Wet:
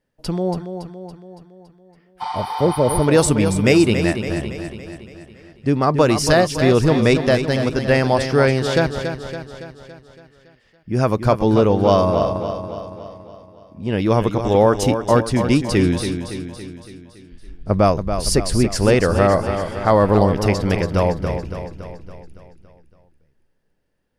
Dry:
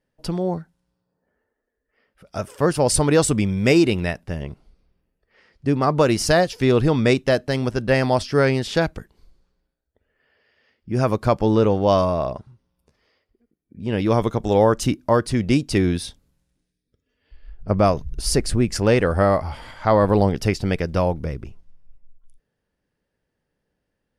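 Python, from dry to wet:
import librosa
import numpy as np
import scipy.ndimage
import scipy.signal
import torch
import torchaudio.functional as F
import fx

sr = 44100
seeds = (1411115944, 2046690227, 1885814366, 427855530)

p1 = fx.spec_repair(x, sr, seeds[0], start_s=2.24, length_s=0.75, low_hz=690.0, high_hz=9200.0, source='after')
p2 = p1 + fx.echo_feedback(p1, sr, ms=281, feedback_pct=55, wet_db=-8.5, dry=0)
y = p2 * librosa.db_to_amplitude(2.0)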